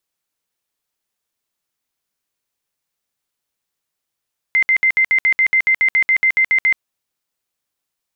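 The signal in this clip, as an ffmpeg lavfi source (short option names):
-f lavfi -i "aevalsrc='0.299*sin(2*PI*2080*mod(t,0.14))*lt(mod(t,0.14),158/2080)':d=2.24:s=44100"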